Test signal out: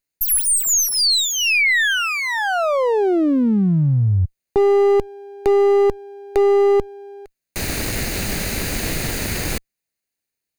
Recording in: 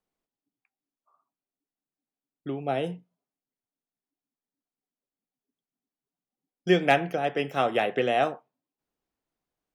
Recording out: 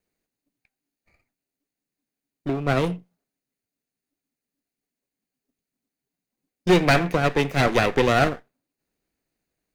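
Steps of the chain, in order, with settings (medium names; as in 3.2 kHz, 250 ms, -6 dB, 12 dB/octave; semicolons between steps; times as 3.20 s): comb filter that takes the minimum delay 0.46 ms; hard clipper -18.5 dBFS; trim +7.5 dB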